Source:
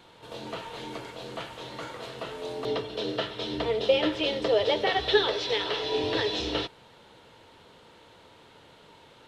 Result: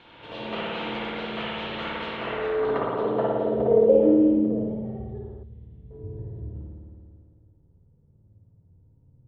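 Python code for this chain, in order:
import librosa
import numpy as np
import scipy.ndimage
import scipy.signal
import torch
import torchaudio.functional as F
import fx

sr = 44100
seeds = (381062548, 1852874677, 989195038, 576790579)

y = fx.rev_spring(x, sr, rt60_s=2.5, pass_ms=(55,), chirp_ms=45, drr_db=-5.5)
y = fx.filter_sweep_lowpass(y, sr, from_hz=2800.0, to_hz=100.0, start_s=2.12, end_s=5.38, q=1.8)
y = fx.band_shelf(y, sr, hz=740.0, db=-14.0, octaves=2.7, at=(5.43, 5.91))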